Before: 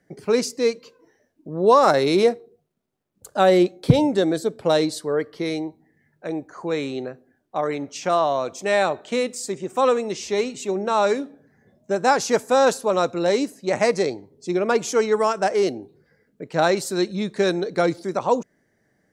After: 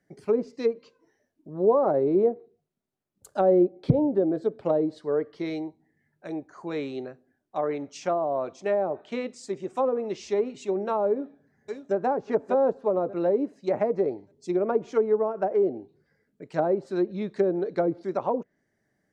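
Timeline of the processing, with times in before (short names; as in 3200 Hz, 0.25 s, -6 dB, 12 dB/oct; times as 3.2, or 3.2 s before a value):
8.54–9.55 high shelf 7700 Hz -10.5 dB
11.09–11.95 echo throw 0.59 s, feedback 35%, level -8 dB
whole clip: notch 490 Hz, Q 12; treble ducked by the level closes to 670 Hz, closed at -16 dBFS; dynamic EQ 460 Hz, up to +6 dB, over -31 dBFS, Q 0.8; gain -7.5 dB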